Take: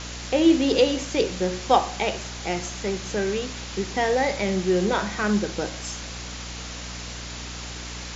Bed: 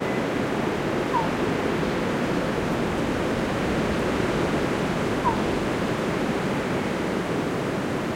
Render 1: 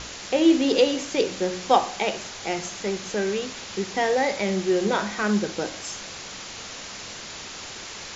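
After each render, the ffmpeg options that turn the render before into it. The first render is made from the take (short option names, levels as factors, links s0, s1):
-af "bandreject=f=60:t=h:w=6,bandreject=f=120:t=h:w=6,bandreject=f=180:t=h:w=6,bandreject=f=240:t=h:w=6,bandreject=f=300:t=h:w=6"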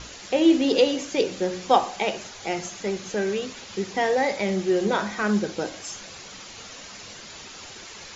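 -af "afftdn=nr=7:nf=-38"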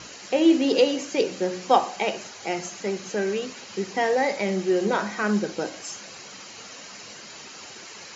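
-af "highpass=140,bandreject=f=3500:w=9.6"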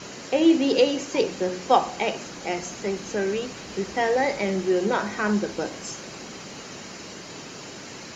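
-filter_complex "[1:a]volume=0.141[s0];[0:a][s0]amix=inputs=2:normalize=0"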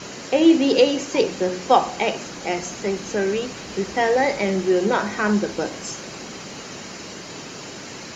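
-af "volume=1.5,alimiter=limit=0.708:level=0:latency=1"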